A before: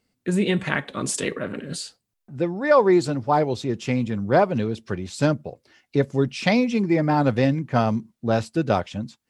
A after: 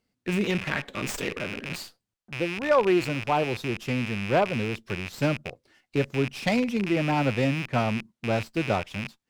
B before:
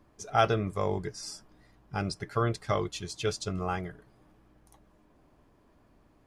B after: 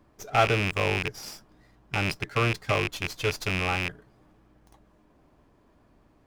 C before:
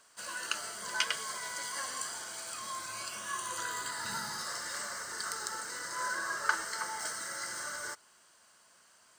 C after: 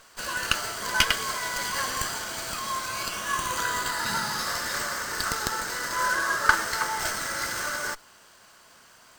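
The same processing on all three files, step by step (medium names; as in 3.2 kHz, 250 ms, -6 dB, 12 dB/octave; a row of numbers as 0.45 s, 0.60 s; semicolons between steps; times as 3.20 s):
rattle on loud lows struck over -37 dBFS, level -17 dBFS; sliding maximum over 3 samples; normalise loudness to -27 LUFS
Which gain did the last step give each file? -4.5 dB, +2.0 dB, +10.0 dB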